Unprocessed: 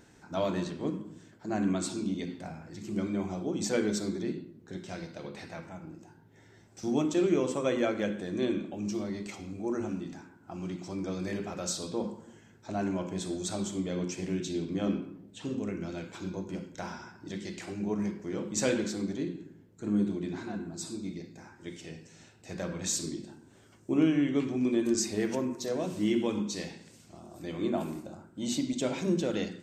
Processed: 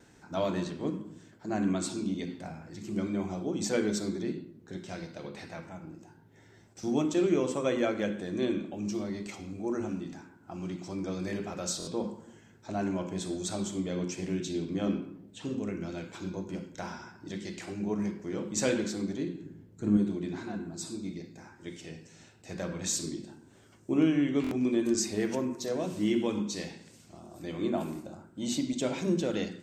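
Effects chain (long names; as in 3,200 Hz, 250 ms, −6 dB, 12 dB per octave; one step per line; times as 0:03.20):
0:19.43–0:19.97: low-shelf EQ 240 Hz +8.5 dB
noise gate with hold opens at −51 dBFS
buffer that repeats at 0:11.78/0:24.42, samples 1,024, times 3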